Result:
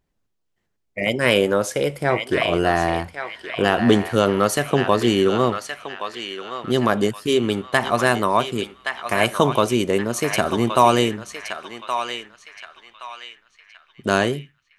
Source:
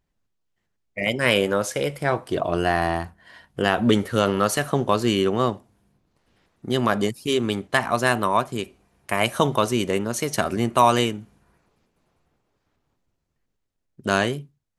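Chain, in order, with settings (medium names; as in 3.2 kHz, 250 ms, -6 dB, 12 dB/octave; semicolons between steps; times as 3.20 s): peaking EQ 400 Hz +3 dB 1.4 oct; on a send: band-passed feedback delay 1121 ms, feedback 43%, band-pass 2.4 kHz, level -4 dB; on the sum: trim +1 dB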